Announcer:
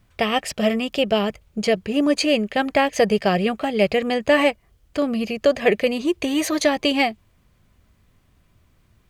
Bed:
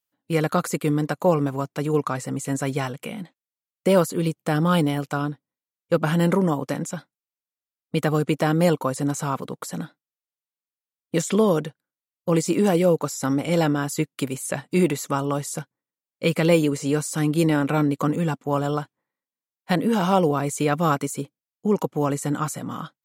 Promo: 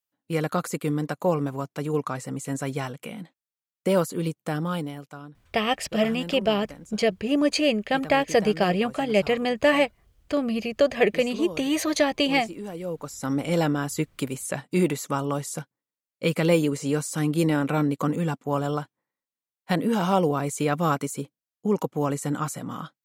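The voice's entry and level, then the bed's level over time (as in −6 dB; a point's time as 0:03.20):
5.35 s, −3.0 dB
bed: 0:04.41 −4 dB
0:05.23 −16.5 dB
0:12.74 −16.5 dB
0:13.37 −2.5 dB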